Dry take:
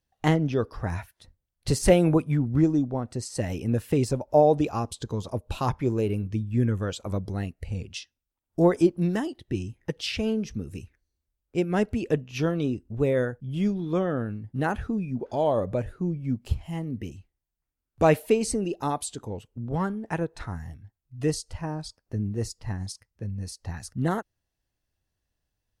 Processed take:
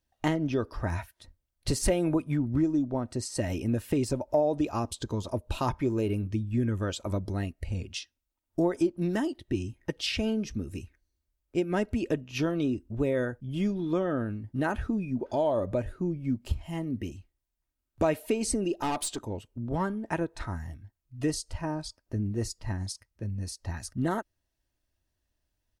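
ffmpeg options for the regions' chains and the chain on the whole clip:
-filter_complex "[0:a]asettb=1/sr,asplit=3[s0][s1][s2];[s0]atrim=end=18.794[s3];[s1]atrim=start=18.79:end=19.19,asetpts=PTS-STARTPTS,afade=t=in:d=0.004:c=qsin,afade=t=out:st=0.396:d=0.004:c=qsin,bass=f=250:g=-8,treble=f=4000:g=-3,acontrast=68,aeval=exprs='(tanh(20*val(0)+0.2)-tanh(0.2))/20':c=same[s4];[s2]atrim=start=19.186[s5];[s3][s4]acrossfade=d=0.004:c1=hsin:c2=qsin[s6];[s6][s5]acrossfade=d=0.004:c1=qsin:c2=hsin,aecho=1:1:3.2:0.36,acompressor=threshold=0.0631:ratio=3"

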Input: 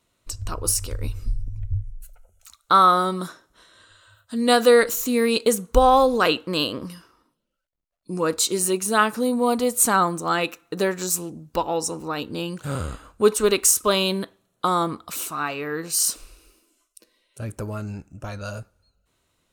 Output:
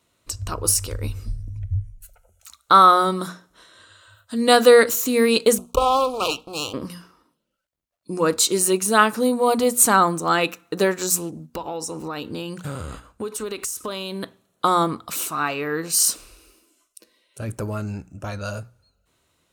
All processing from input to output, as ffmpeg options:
-filter_complex "[0:a]asettb=1/sr,asplit=3[s0][s1][s2];[s0]atrim=end=5.584[s3];[s1]atrim=start=5.58:end=6.74,asetpts=PTS-STARTPTS,afade=t=in:d=0.004:c=qsin,afade=t=out:st=1.156:d=0.004:c=qsin,aeval=exprs='max(val(0),0)':c=same,asuperstop=centerf=1800:order=12:qfactor=1.7,equalizer=f=180:w=0.56:g=-6.5[s4];[s2]atrim=start=6.736[s5];[s3][s4]acrossfade=d=0.004:c1=hsin:c2=qsin[s6];[s6][s5]acrossfade=d=0.004:c1=qsin:c2=hsin,asettb=1/sr,asplit=3[s7][s8][s9];[s7]atrim=end=11.314[s10];[s8]atrim=start=11.31:end=14.23,asetpts=PTS-STARTPTS,afade=t=in:d=0.004:c=qsin,afade=t=out:st=2.916:d=0.004:c=qsin,agate=range=0.501:threshold=0.00631:ratio=16:release=100:detection=peak,acompressor=threshold=0.0398:ratio=10:attack=3.2:release=140:knee=1:detection=peak[s11];[s9]atrim=start=14.226[s12];[s10][s11]acrossfade=d=0.004:c1=hsin:c2=qsin[s13];[s13][s12]acrossfade=d=0.004:c1=qsin:c2=hsin,highpass=51,bandreject=f=60:t=h:w=6,bandreject=f=120:t=h:w=6,bandreject=f=180:t=h:w=6,bandreject=f=240:t=h:w=6,volume=1.41"

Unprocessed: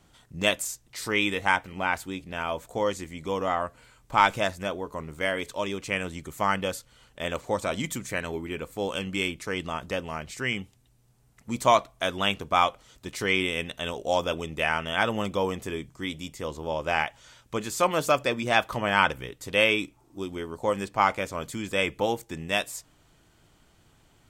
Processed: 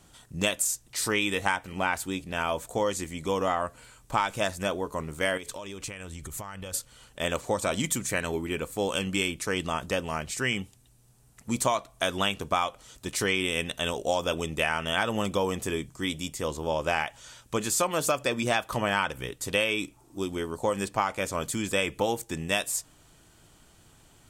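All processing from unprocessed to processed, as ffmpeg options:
-filter_complex "[0:a]asettb=1/sr,asplit=3[s0][s1][s2];[s0]atrim=end=5.374[s3];[s1]atrim=start=5.37:end=6.74,asetpts=PTS-STARTPTS,afade=t=in:d=0.004:c=qsin,afade=t=out:st=1.366:d=0.004:c=qsin,asubboost=boost=10:cutoff=110,acompressor=threshold=0.0141:ratio=16:attack=3.2:release=140:knee=1:detection=peak[s4];[s2]atrim=start=6.736[s5];[s3][s4]acrossfade=d=0.004:c1=hsin:c2=qsin[s6];[s6][s5]acrossfade=d=0.004:c1=qsin:c2=hsin,equalizer=f=9500:w=0.8:g=7.5,bandreject=f=2100:w=20,acompressor=threshold=0.0631:ratio=10,volume=1.33"

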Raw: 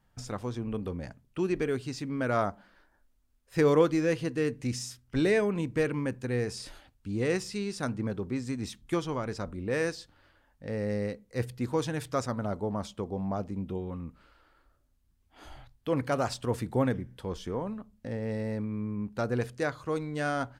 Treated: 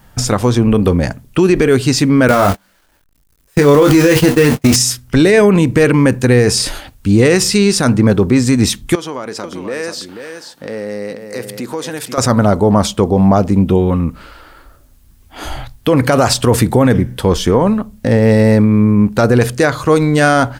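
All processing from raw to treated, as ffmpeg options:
-filter_complex "[0:a]asettb=1/sr,asplit=3[s0][s1][s2];[s0]atrim=end=2.284[s3];[s1]atrim=start=2.28:end=4.76,asetpts=PTS-STARTPTS,afade=t=in:d=0.004:c=qsin,afade=t=out:st=2.476:d=0.004:c=qsin,aeval=exprs='val(0)+0.5*0.0188*sgn(val(0))':c=same,agate=range=0.00891:threshold=0.02:ratio=16:release=100:detection=peak,asplit=2[s4][s5];[s5]adelay=21,volume=0.562[s6];[s4][s6]amix=inputs=2:normalize=0,atrim=end_sample=109368[s7];[s2]atrim=start=4.756[s8];[s3][s7]acrossfade=d=0.004:c1=hsin:c2=qsin[s9];[s9][s8]acrossfade=d=0.004:c1=qsin:c2=hsin,asettb=1/sr,asplit=3[s10][s11][s12];[s10]atrim=end=8.954[s13];[s11]atrim=start=8.95:end=12.18,asetpts=PTS-STARTPTS,afade=t=in:d=0.004:c=qsin,afade=t=out:st=3.226:d=0.004:c=qsin,highpass=250,acompressor=threshold=0.00316:ratio=2.5:attack=3.2:release=140:knee=1:detection=peak,aecho=1:1:486:0.398,atrim=end_sample=142443[s14];[s12]atrim=start=12.176[s15];[s13][s14]acrossfade=d=0.004:c1=hsin:c2=qsin[s16];[s16][s15]acrossfade=d=0.004:c1=qsin:c2=hsin,highshelf=f=8200:g=7.5,alimiter=level_in=16.8:limit=0.891:release=50:level=0:latency=1,volume=0.891"

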